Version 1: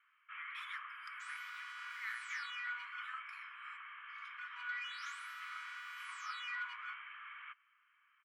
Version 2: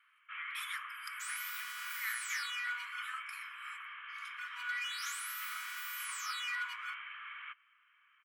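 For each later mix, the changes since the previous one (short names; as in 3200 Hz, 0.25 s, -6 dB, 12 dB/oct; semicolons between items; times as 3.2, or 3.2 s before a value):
master: remove tape spacing loss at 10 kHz 22 dB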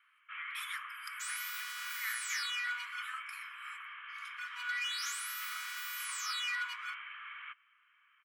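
second sound: add bell 4400 Hz +5 dB 1.8 oct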